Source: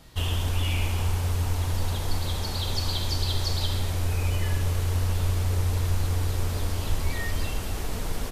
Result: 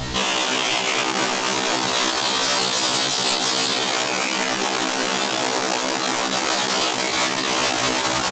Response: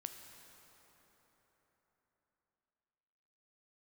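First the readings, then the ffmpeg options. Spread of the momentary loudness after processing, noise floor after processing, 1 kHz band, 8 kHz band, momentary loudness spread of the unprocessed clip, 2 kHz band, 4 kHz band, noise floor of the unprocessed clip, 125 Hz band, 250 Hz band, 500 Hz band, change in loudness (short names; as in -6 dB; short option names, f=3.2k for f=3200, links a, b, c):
2 LU, -24 dBFS, +16.0 dB, +14.5 dB, 4 LU, +15.5 dB, +13.5 dB, -30 dBFS, -13.5 dB, +10.0 dB, +13.0 dB, +8.0 dB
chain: -filter_complex "[0:a]bandreject=f=560:w=12,asplit=2[a][b];[b]adelay=176,lowpass=f=2k:p=1,volume=-15dB,asplit=2[c][d];[d]adelay=176,lowpass=f=2k:p=1,volume=0.52,asplit=2[e][f];[f]adelay=176,lowpass=f=2k:p=1,volume=0.52,asplit=2[g][h];[h]adelay=176,lowpass=f=2k:p=1,volume=0.52,asplit=2[i][j];[j]adelay=176,lowpass=f=2k:p=1,volume=0.52[k];[c][e][g][i][k]amix=inputs=5:normalize=0[l];[a][l]amix=inputs=2:normalize=0,afreqshift=-32,aresample=16000,asoftclip=type=tanh:threshold=-28dB,aresample=44100,afftfilt=real='re*lt(hypot(re,im),0.0316)':imag='im*lt(hypot(re,im),0.0316)':win_size=1024:overlap=0.75,acontrast=54,alimiter=level_in=29.5dB:limit=-1dB:release=50:level=0:latency=1,afftfilt=real='re*1.73*eq(mod(b,3),0)':imag='im*1.73*eq(mod(b,3),0)':win_size=2048:overlap=0.75,volume=-7dB"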